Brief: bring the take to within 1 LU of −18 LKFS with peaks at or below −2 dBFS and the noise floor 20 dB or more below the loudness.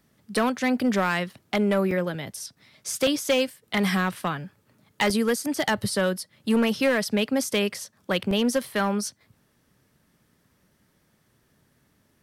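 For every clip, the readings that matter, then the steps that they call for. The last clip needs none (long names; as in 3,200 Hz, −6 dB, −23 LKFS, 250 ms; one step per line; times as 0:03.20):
share of clipped samples 0.8%; peaks flattened at −16.0 dBFS; number of dropouts 5; longest dropout 3.0 ms; integrated loudness −25.5 LKFS; sample peak −16.0 dBFS; target loudness −18.0 LKFS
→ clipped peaks rebuilt −16 dBFS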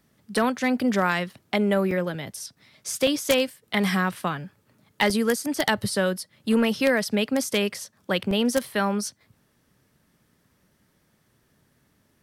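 share of clipped samples 0.0%; number of dropouts 5; longest dropout 3.0 ms
→ repair the gap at 0:00.35/0:01.91/0:03.07/0:05.10/0:08.31, 3 ms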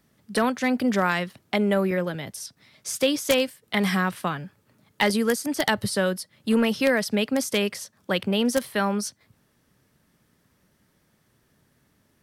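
number of dropouts 0; integrated loudness −24.5 LKFS; sample peak −7.0 dBFS; target loudness −18.0 LKFS
→ level +6.5 dB
brickwall limiter −2 dBFS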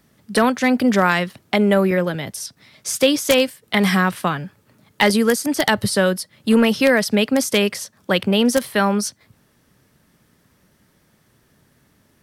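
integrated loudness −18.5 LKFS; sample peak −2.0 dBFS; background noise floor −60 dBFS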